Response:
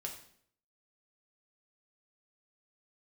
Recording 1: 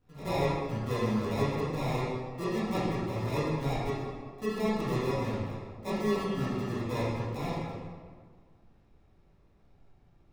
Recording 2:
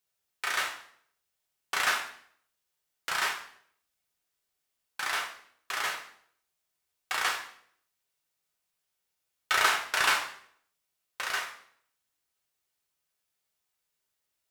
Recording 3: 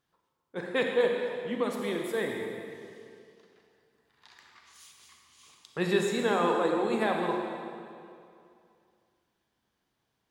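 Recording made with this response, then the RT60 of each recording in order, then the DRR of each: 2; 1.7 s, 0.60 s, 2.5 s; -12.0 dB, 0.5 dB, 1.0 dB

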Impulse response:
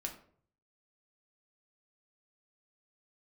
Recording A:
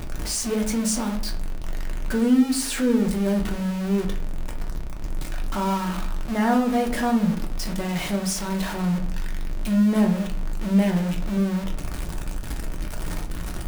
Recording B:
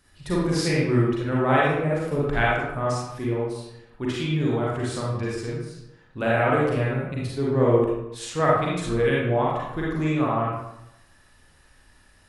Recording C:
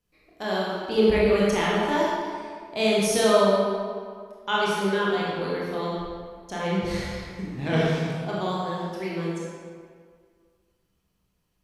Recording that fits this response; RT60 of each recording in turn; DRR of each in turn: A; 0.55 s, 0.85 s, 2.0 s; 1.5 dB, -6.0 dB, -6.5 dB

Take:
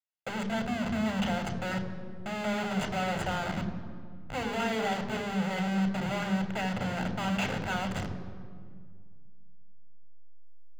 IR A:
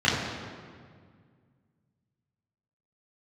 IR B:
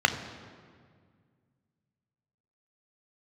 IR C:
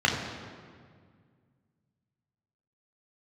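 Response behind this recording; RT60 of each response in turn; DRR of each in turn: B; 1.9 s, 1.9 s, 1.9 s; -8.0 dB, 7.0 dB, -1.5 dB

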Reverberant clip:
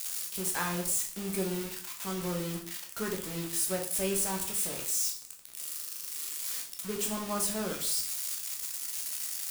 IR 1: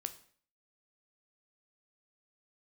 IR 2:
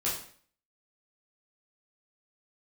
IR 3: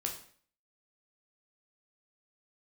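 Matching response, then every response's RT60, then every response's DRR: 3; 0.50 s, 0.50 s, 0.50 s; 8.5 dB, -7.5 dB, 1.0 dB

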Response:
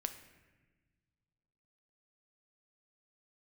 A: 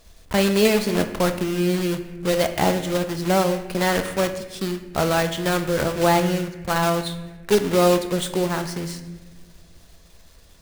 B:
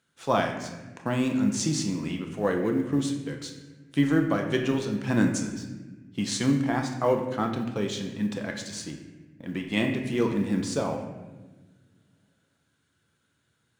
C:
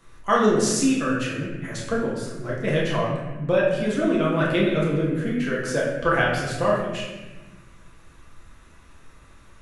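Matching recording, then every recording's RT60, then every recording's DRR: A; 1.3 s, 1.3 s, 1.2 s; 7.5 dB, 2.5 dB, -5.5 dB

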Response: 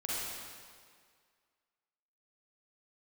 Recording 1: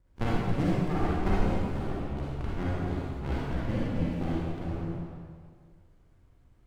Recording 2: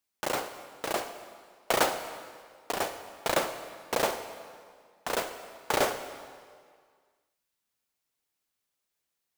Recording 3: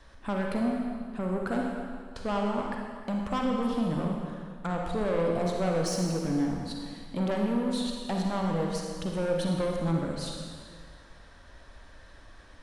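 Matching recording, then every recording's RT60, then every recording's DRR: 1; 1.9 s, 1.9 s, 1.9 s; -7.5 dB, 9.0 dB, 0.0 dB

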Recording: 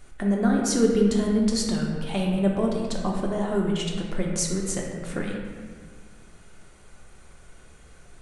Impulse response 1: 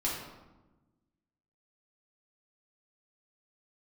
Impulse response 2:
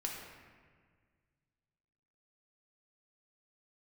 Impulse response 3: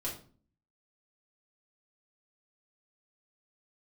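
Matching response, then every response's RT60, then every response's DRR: 2; 1.1 s, 1.7 s, 0.45 s; -6.0 dB, -1.5 dB, -6.0 dB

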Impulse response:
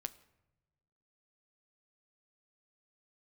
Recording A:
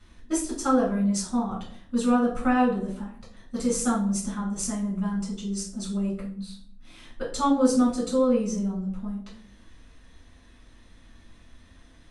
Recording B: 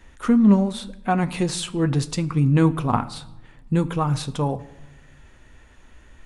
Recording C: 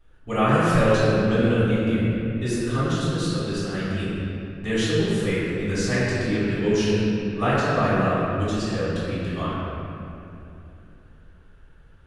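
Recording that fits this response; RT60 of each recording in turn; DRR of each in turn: B; 0.55 s, no single decay rate, 2.7 s; -5.0 dB, 10.5 dB, -13.0 dB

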